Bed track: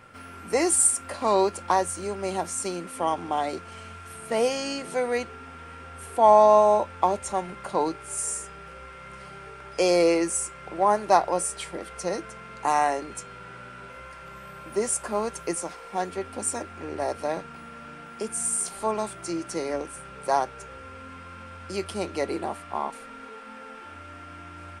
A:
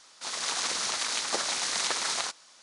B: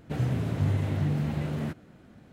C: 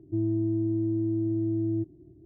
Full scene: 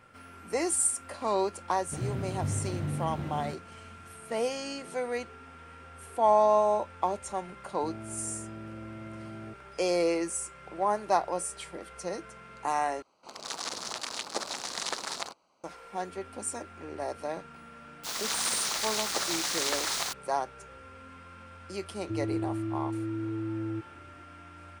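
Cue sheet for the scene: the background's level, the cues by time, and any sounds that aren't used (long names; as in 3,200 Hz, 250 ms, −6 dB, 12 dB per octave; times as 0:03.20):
bed track −6.5 dB
0:01.82: mix in B −6 dB
0:07.70: mix in C −14.5 dB + ceiling on every frequency bin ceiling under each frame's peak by 28 dB
0:13.02: overwrite with A −1 dB + adaptive Wiener filter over 25 samples
0:17.82: mix in A −1.5 dB + bit-depth reduction 6 bits, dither none
0:21.97: mix in C −6 dB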